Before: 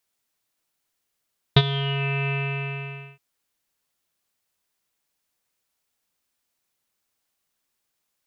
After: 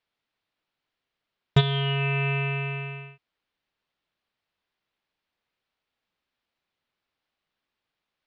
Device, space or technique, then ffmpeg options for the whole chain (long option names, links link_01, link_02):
synthesiser wavefolder: -af "aeval=exprs='0.299*(abs(mod(val(0)/0.299+3,4)-2)-1)':channel_layout=same,lowpass=frequency=4000:width=0.5412,lowpass=frequency=4000:width=1.3066"